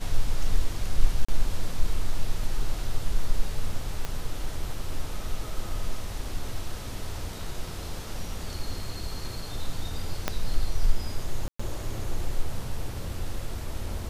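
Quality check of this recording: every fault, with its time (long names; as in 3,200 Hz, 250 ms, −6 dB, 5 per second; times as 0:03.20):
0:01.25–0:01.28: drop-out 35 ms
0:04.05: click −16 dBFS
0:10.28: click −9 dBFS
0:11.48–0:11.60: drop-out 115 ms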